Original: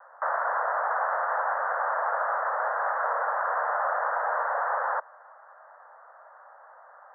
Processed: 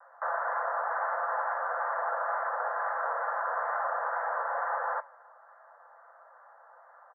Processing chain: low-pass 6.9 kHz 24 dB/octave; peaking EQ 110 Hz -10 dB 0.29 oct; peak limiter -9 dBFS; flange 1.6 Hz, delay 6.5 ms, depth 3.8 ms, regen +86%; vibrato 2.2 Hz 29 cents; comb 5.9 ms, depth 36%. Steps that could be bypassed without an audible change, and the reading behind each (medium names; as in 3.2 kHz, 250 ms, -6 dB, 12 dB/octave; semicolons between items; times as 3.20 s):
low-pass 6.9 kHz: input has nothing above 2 kHz; peaking EQ 110 Hz: input has nothing below 400 Hz; peak limiter -9 dBFS: peak at its input -14.0 dBFS